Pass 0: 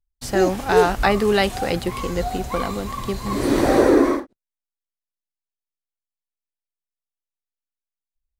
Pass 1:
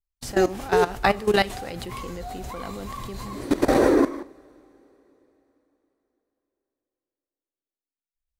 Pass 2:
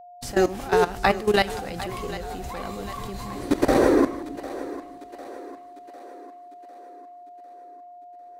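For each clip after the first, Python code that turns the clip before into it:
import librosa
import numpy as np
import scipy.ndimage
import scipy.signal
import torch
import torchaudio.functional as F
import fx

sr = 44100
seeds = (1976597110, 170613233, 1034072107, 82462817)

y1 = fx.level_steps(x, sr, step_db=17)
y1 = fx.rev_double_slope(y1, sr, seeds[0], early_s=0.48, late_s=3.8, knee_db=-18, drr_db=17.5)
y2 = y1 + 10.0 ** (-43.0 / 20.0) * np.sin(2.0 * np.pi * 710.0 * np.arange(len(y1)) / sr)
y2 = fx.echo_split(y2, sr, split_hz=300.0, low_ms=302, high_ms=751, feedback_pct=52, wet_db=-15.0)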